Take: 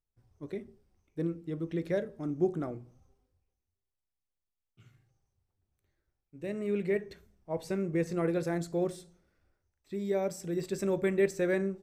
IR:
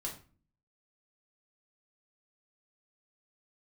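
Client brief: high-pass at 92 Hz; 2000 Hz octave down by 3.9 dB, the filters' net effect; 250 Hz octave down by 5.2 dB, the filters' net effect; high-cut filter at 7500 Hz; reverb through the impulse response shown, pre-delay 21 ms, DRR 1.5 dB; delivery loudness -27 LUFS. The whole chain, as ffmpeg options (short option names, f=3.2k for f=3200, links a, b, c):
-filter_complex "[0:a]highpass=92,lowpass=7.5k,equalizer=f=250:t=o:g=-9,equalizer=f=2k:t=o:g=-4.5,asplit=2[a][b];[1:a]atrim=start_sample=2205,adelay=21[c];[b][c]afir=irnorm=-1:irlink=0,volume=-1.5dB[d];[a][d]amix=inputs=2:normalize=0,volume=7.5dB"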